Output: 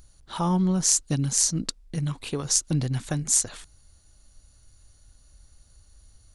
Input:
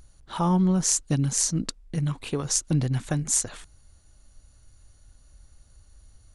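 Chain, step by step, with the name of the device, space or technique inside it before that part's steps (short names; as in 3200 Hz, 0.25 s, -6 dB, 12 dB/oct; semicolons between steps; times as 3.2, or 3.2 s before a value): presence and air boost (bell 4500 Hz +4 dB 0.98 oct; high shelf 9100 Hz +6.5 dB); gain -1.5 dB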